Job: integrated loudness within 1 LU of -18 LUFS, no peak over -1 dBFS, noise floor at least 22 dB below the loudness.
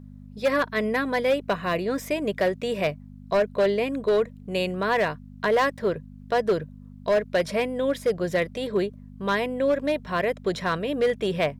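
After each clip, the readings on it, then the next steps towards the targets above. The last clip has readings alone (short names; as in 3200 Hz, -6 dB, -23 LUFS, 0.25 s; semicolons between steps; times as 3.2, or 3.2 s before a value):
clipped 1.2%; flat tops at -16.0 dBFS; hum 50 Hz; harmonics up to 250 Hz; hum level -41 dBFS; loudness -25.5 LUFS; peak -16.0 dBFS; loudness target -18.0 LUFS
-> clip repair -16 dBFS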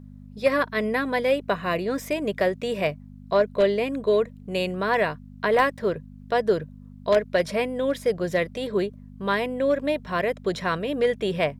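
clipped 0.0%; hum 50 Hz; harmonics up to 250 Hz; hum level -41 dBFS
-> de-hum 50 Hz, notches 5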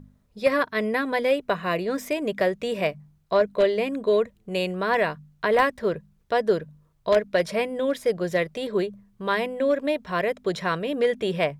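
hum none; loudness -25.0 LUFS; peak -7.0 dBFS; loudness target -18.0 LUFS
-> gain +7 dB; limiter -1 dBFS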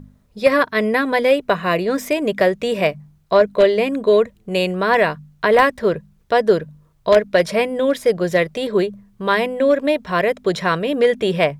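loudness -18.0 LUFS; peak -1.0 dBFS; noise floor -56 dBFS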